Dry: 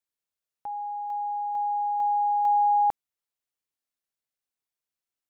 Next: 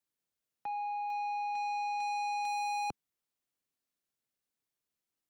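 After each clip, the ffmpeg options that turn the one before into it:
-filter_complex "[0:a]acrossover=split=110|390[a][b][c];[b]acontrast=78[d];[a][d][c]amix=inputs=3:normalize=0,asoftclip=type=tanh:threshold=-33.5dB"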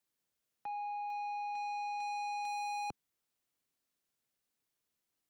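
-af "alimiter=level_in=16.5dB:limit=-24dB:level=0:latency=1,volume=-16.5dB,volume=3dB"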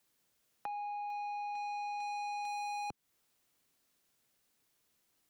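-af "acompressor=threshold=-51dB:ratio=4,volume=9.5dB"

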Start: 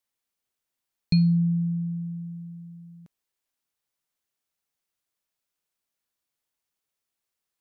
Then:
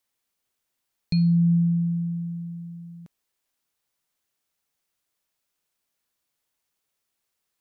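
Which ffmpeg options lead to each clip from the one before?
-af "alimiter=limit=-20.5dB:level=0:latency=1,volume=5dB"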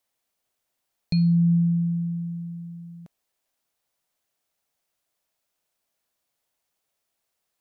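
-af "equalizer=f=660:w=2.1:g=6.5"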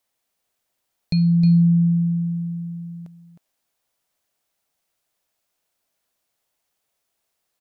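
-af "aecho=1:1:312:0.398,volume=2.5dB"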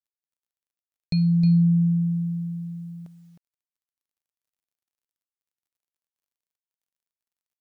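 -af "acrusher=bits=10:mix=0:aa=0.000001,volume=-3dB"

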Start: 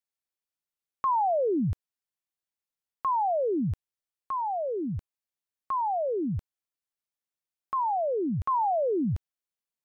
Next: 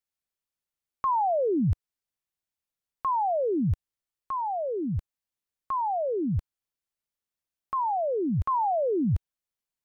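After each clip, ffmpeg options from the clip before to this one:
-af "lowshelf=f=120:g=8"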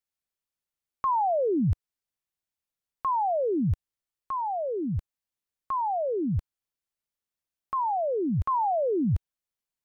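-af anull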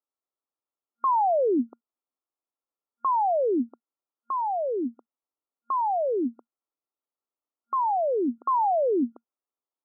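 -af "afftfilt=real='re*between(b*sr/4096,230,1400)':imag='im*between(b*sr/4096,230,1400)':win_size=4096:overlap=0.75,volume=2.5dB"

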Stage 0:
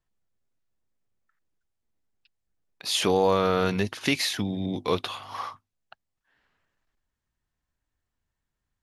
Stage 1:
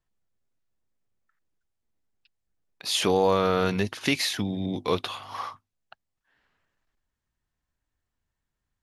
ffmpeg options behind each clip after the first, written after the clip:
-af anull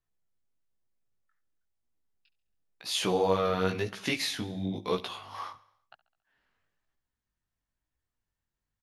-af "aecho=1:1:69|138|207|276|345:0.106|0.0604|0.0344|0.0196|0.0112,flanger=delay=15.5:depth=7.6:speed=1,volume=-2dB"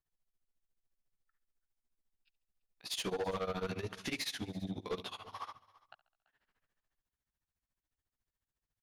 -af "tremolo=f=14:d=0.93,asoftclip=type=tanh:threshold=-30dB,aecho=1:1:336:0.0794,volume=-1dB"

